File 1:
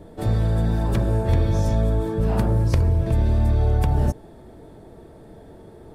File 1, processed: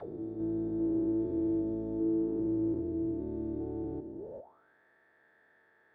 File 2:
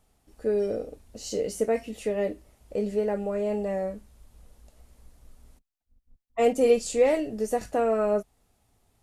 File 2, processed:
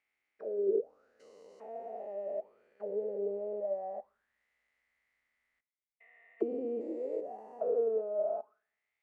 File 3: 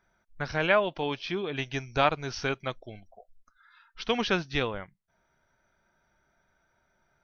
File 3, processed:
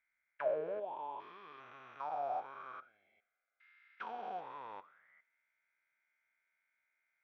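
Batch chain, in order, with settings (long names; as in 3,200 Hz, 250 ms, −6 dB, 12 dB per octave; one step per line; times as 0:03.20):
spectrum averaged block by block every 400 ms
coupled-rooms reverb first 0.65 s, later 2.4 s, from −25 dB, DRR 15.5 dB
envelope filter 330–2,200 Hz, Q 9.8, down, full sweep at −24 dBFS
level +5 dB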